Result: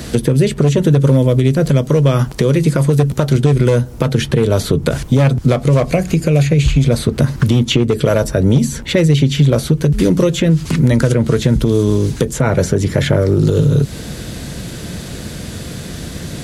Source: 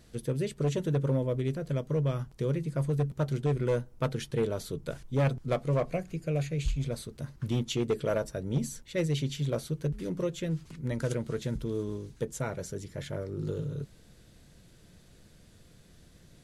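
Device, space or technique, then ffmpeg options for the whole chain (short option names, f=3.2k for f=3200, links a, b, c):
mastering chain: -filter_complex "[0:a]asettb=1/sr,asplit=3[a][b][c];[a]atrim=end=1.894[d];[b]atrim=start=1.89:end=3.35,asetpts=PTS-STARTPTS,afade=t=in:d=0.004:c=qsin,afade=t=out:st=1.456:d=0.004:c=qsin,equalizer=f=90:t=o:w=2.7:g=-5.5[e];[c]atrim=start=3.346[f];[d][e]acrossfade=d=0.004:c1=hsin:c2=qsin[g];[g][f]acrossfade=d=0.004:c1=qsin:c2=hsin,highpass=48,equalizer=f=250:t=o:w=0.44:g=3,acrossover=split=97|3100[h][i][j];[h]acompressor=threshold=-42dB:ratio=4[k];[i]acompressor=threshold=-38dB:ratio=4[l];[j]acompressor=threshold=-58dB:ratio=4[m];[k][l][m]amix=inputs=3:normalize=0,acompressor=threshold=-39dB:ratio=3,alimiter=level_in=31.5dB:limit=-1dB:release=50:level=0:latency=1,volume=-1dB"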